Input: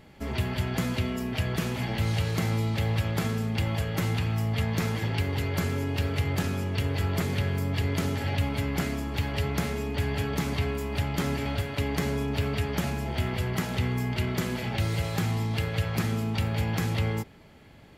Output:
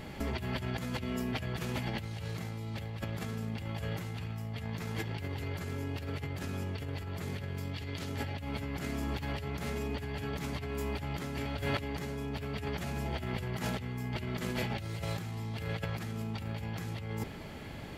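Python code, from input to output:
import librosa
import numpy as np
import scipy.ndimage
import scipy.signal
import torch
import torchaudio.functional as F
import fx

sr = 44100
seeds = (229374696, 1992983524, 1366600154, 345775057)

y = fx.peak_eq(x, sr, hz=3900.0, db=7.0, octaves=1.7, at=(7.57, 8.09))
y = fx.over_compress(y, sr, threshold_db=-37.0, ratio=-1.0)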